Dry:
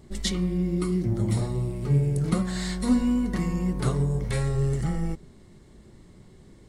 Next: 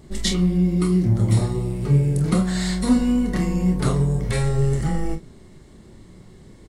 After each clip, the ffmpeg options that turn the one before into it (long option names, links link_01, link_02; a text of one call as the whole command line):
ffmpeg -i in.wav -af "aecho=1:1:27|45:0.422|0.282,volume=4.5dB" out.wav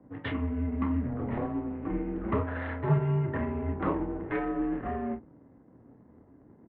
ffmpeg -i in.wav -filter_complex "[0:a]adynamicsmooth=sensitivity=5:basefreq=660,acrossover=split=280 2200:gain=0.0891 1 0.0708[link_01][link_02][link_03];[link_01][link_02][link_03]amix=inputs=3:normalize=0,highpass=frequency=160:width_type=q:width=0.5412,highpass=frequency=160:width_type=q:width=1.307,lowpass=frequency=3200:width_type=q:width=0.5176,lowpass=frequency=3200:width_type=q:width=0.7071,lowpass=frequency=3200:width_type=q:width=1.932,afreqshift=-100" out.wav